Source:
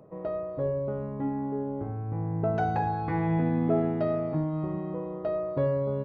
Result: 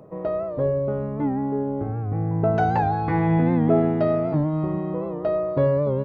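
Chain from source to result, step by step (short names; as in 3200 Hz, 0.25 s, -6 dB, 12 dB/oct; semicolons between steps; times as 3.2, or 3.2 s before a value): 0.65–2.31 notch 990 Hz, Q 13; record warp 78 rpm, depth 100 cents; gain +6.5 dB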